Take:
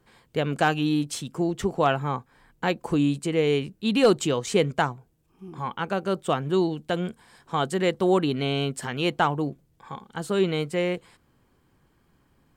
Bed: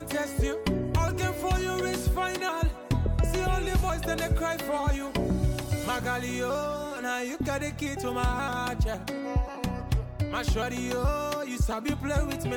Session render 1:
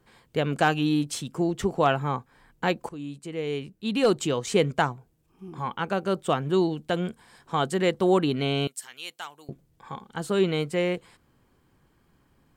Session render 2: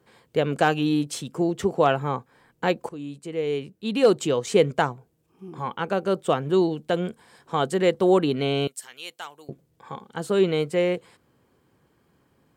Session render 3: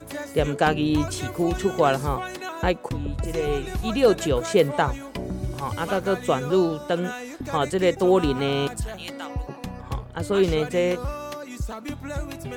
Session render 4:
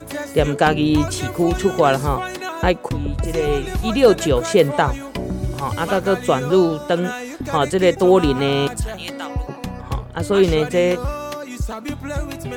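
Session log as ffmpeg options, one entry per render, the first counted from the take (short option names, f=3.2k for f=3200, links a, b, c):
-filter_complex "[0:a]asettb=1/sr,asplit=3[a][b][c];[a]atrim=end=8.674[d];[b]atrim=start=8.67:end=9.49,asetpts=PTS-STARTPTS,afade=t=in:d=0.004:c=qsin,afade=t=out:st=0.816:d=0.004:c=qsin,aderivative[e];[c]atrim=start=9.486[f];[d][e]acrossfade=d=0.004:c1=hsin:c2=qsin[g];[g][f]acrossfade=d=0.004:c1=qsin:c2=hsin,asplit=2[h][i];[h]atrim=end=2.89,asetpts=PTS-STARTPTS,afade=t=out:st=2.886:d=0.004:c=hsin:silence=0.125893[j];[i]atrim=start=2.89,asetpts=PTS-STARTPTS,afade=t=in:d=1.76:silence=0.125893[k];[j][k]concat=n=2:v=0:a=1"
-af "highpass=81,equalizer=f=480:w=1.7:g=5"
-filter_complex "[1:a]volume=-3.5dB[a];[0:a][a]amix=inputs=2:normalize=0"
-af "volume=5.5dB,alimiter=limit=-3dB:level=0:latency=1"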